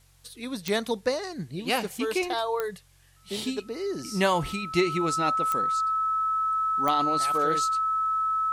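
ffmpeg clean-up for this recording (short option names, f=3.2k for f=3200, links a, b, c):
-af "adeclick=t=4,bandreject=f=45.6:t=h:w=4,bandreject=f=91.2:t=h:w=4,bandreject=f=136.8:t=h:w=4,bandreject=f=1.3k:w=30,agate=range=-21dB:threshold=-40dB"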